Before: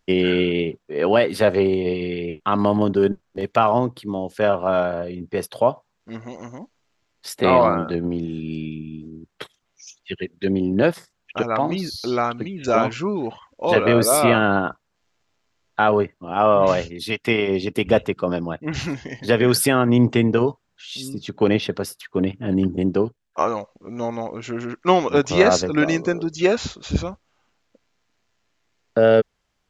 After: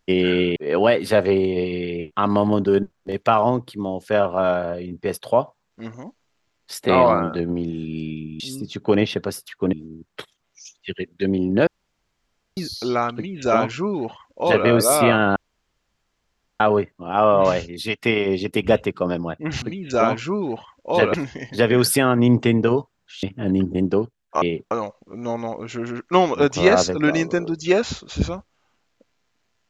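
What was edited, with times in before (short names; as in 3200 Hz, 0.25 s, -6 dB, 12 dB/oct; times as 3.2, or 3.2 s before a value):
0.56–0.85 move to 23.45
6.23–6.49 cut
10.89–11.79 room tone
12.36–13.88 copy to 18.84
14.58–15.82 room tone
20.93–22.26 move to 8.95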